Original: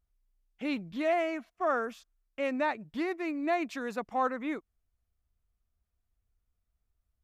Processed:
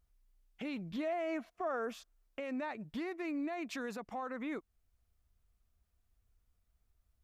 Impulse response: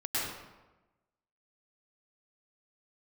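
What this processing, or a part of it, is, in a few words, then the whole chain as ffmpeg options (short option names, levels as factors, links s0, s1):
stacked limiters: -filter_complex "[0:a]alimiter=limit=0.0631:level=0:latency=1:release=61,alimiter=level_in=1.88:limit=0.0631:level=0:latency=1:release=451,volume=0.531,alimiter=level_in=3.98:limit=0.0631:level=0:latency=1:release=86,volume=0.251,asettb=1/sr,asplit=3[s0][s1][s2];[s0]atrim=end=0.984[s3];[s1]atrim=start=0.98:end=2.4,asetpts=PTS-STARTPTS,afade=t=in:d=0.004:c=qsin,afade=t=out:st=1.416:d=0.004:c=qsin,equalizer=f=550:t=o:w=1.8:g=4.5[s4];[s2]atrim=start=2.396[s5];[s3][s4]acrossfade=d=0.004:c1=hsin:c2=qsin[s6];[s6][s5]acrossfade=d=0.004:c1=qsin:c2=hsin,volume=1.58"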